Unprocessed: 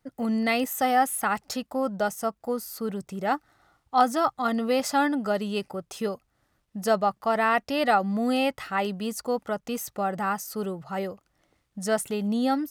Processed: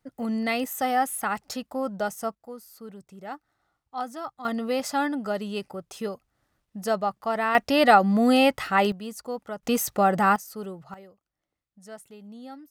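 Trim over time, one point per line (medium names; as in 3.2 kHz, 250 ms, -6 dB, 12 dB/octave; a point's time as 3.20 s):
-2 dB
from 2.35 s -11.5 dB
from 4.45 s -2.5 dB
from 7.55 s +5.5 dB
from 8.92 s -5.5 dB
from 9.63 s +7 dB
from 10.36 s -5 dB
from 10.94 s -17.5 dB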